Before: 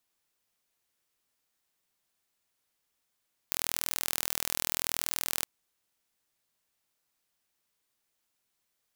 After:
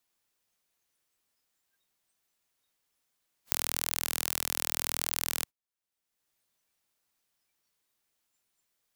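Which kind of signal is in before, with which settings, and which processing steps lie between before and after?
impulse train 40.8 per second, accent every 0, −3 dBFS 1.92 s
noise reduction from a noise print of the clip's start 21 dB
multiband upward and downward compressor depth 70%

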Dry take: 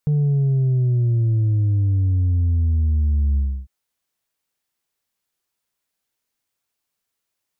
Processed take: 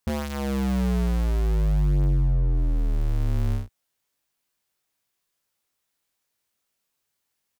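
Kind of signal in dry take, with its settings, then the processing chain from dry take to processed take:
bass drop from 150 Hz, over 3.60 s, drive 2.5 dB, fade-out 0.30 s, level −15.5 dB
sub-harmonics by changed cycles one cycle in 2, inverted
brickwall limiter −21.5 dBFS
double-tracking delay 21 ms −4 dB

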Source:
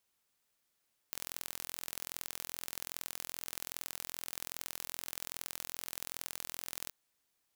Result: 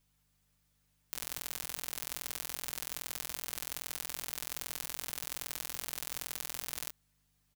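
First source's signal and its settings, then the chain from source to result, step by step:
impulse train 42.5 per second, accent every 2, −11.5 dBFS 5.79 s
mains hum 50 Hz, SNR 33 dB
comb filter 6.7 ms, depth 88%

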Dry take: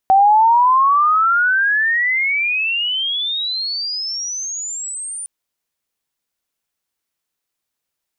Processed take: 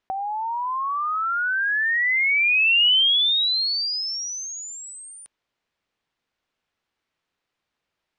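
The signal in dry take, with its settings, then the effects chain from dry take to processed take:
glide logarithmic 760 Hz → 9,400 Hz −7.5 dBFS → −25 dBFS 5.16 s
low-pass filter 3,300 Hz 12 dB per octave
compressor whose output falls as the input rises −22 dBFS, ratio −1

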